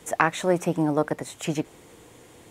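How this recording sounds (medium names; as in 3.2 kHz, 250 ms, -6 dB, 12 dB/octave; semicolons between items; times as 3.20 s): noise floor -52 dBFS; spectral tilt -5.5 dB/octave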